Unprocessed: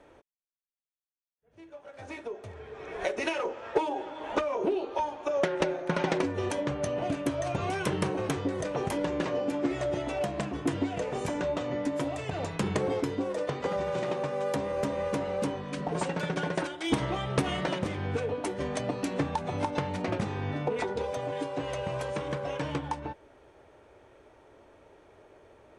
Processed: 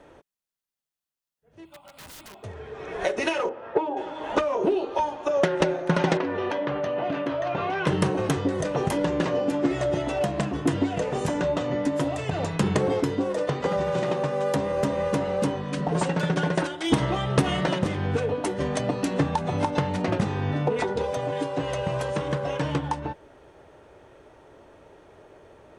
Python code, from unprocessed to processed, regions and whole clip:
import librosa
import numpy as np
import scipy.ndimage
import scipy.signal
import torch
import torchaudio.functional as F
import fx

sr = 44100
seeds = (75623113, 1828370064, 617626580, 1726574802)

y = fx.chain(x, sr, fx.high_shelf(hz=4800.0, db=11.5),
    fx.fixed_phaser(hz=1700.0, stages=6),
    fx.overflow_wrap(gain_db=44.0), at=(1.65, 2.43))
y = fx.chain(y, sr, fx.highpass(hz=140.0, slope=6),
    fx.spacing_loss(db_at_10k=35), at=(3.49, 3.97))
y = fx.chain(y, sr, fx.highpass(hz=600.0, slope=6),
    fx.air_absorb(metres=290.0),
    fx.env_flatten(amount_pct=70), at=(6.17, 7.87))
y = fx.peak_eq(y, sr, hz=160.0, db=4.5, octaves=0.52)
y = fx.notch(y, sr, hz=2300.0, q=16.0)
y = F.gain(torch.from_numpy(y), 5.0).numpy()